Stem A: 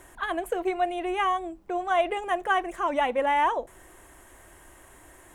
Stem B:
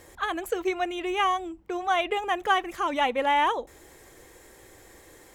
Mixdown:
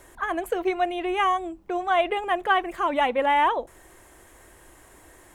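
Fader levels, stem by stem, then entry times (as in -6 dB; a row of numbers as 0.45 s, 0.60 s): -1.0 dB, -6.5 dB; 0.00 s, 0.00 s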